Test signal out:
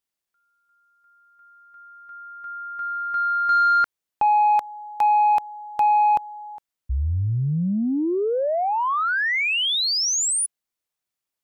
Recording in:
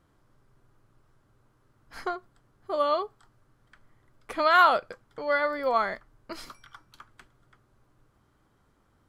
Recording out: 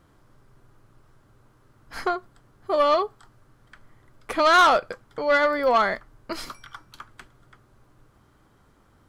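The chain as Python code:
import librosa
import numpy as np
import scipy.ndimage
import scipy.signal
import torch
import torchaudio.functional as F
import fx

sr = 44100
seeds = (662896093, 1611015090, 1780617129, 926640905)

y = 10.0 ** (-19.5 / 20.0) * np.tanh(x / 10.0 ** (-19.5 / 20.0))
y = y * librosa.db_to_amplitude(7.5)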